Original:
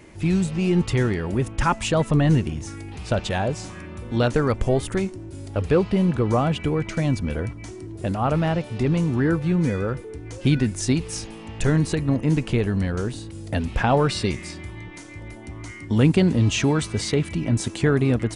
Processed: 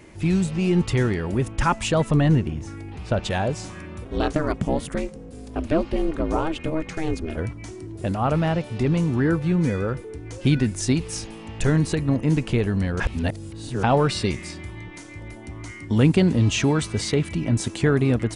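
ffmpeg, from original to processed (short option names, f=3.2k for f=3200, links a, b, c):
-filter_complex "[0:a]asettb=1/sr,asplit=3[a][b][c];[a]atrim=end=2.284[d];[b]atrim=start=2.28:end=3.23,asetpts=PTS-STARTPTS,afade=t=in:d=0.004:c=qsin,afade=t=out:st=0.946:d=0.004:c=qsin,highshelf=f=3.7k:g=-10.5[e];[c]atrim=start=3.226[f];[d][e]acrossfade=d=0.004:c1=hsin:c2=qsin[g];[g][f]acrossfade=d=0.004:c1=qsin:c2=hsin,asplit=3[h][i][j];[h]afade=t=out:st=4.04:d=0.02[k];[i]aeval=exprs='val(0)*sin(2*PI*160*n/s)':c=same,afade=t=in:st=4.04:d=0.02,afade=t=out:st=7.36:d=0.02[l];[j]afade=t=in:st=7.36:d=0.02[m];[k][l][m]amix=inputs=3:normalize=0,asplit=3[n][o][p];[n]atrim=end=13.002[q];[o]atrim=start=12.998:end=13.832,asetpts=PTS-STARTPTS,areverse[r];[p]atrim=start=13.828[s];[q][r]acrossfade=d=0.004:c1=hsin:c2=hsin[t];[t][s]acrossfade=d=0.004:c1=hsin:c2=hsin"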